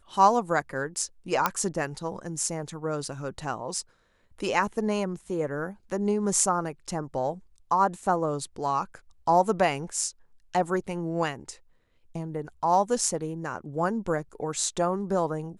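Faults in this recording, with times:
0:01.46: click −7 dBFS

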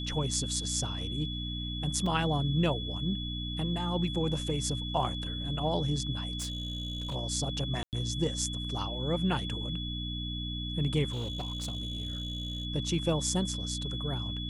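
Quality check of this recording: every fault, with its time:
mains hum 60 Hz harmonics 5 −37 dBFS
whistle 3,400 Hz −38 dBFS
0:02.06: drop-out 4 ms
0:06.38–0:07.16: clipping −31 dBFS
0:07.83–0:07.93: drop-out 98 ms
0:11.10–0:12.65: clipping −31 dBFS

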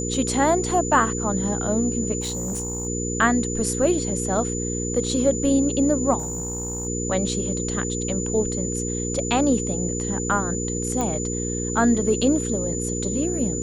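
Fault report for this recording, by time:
mains hum 60 Hz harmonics 8 −28 dBFS
whistle 7,000 Hz −29 dBFS
0:02.20–0:02.87: clipping −23.5 dBFS
0:06.18–0:06.87: clipping −24.5 dBFS
0:11.01: click −12 dBFS

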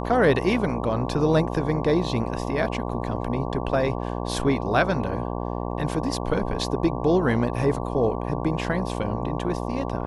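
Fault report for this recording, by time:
mains buzz 60 Hz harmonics 19 −29 dBFS

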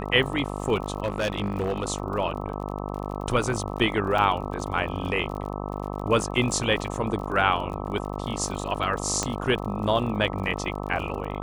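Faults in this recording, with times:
mains buzz 50 Hz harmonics 26 −32 dBFS
surface crackle 47 per second −34 dBFS
0:01.04–0:01.84: clipping −21 dBFS
0:04.18: drop-out 3.3 ms
0:09.23: click −11 dBFS

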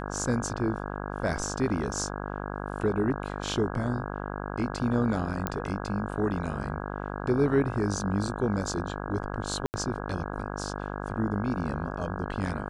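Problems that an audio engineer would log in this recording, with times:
mains buzz 50 Hz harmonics 33 −35 dBFS
0:05.47: click −13 dBFS
0:09.66–0:09.74: drop-out 79 ms

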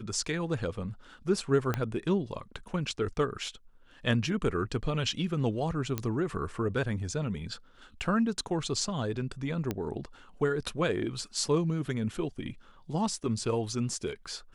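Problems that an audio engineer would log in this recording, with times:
0:01.74: click −15 dBFS
0:05.98: click −16 dBFS
0:09.71: click −17 dBFS

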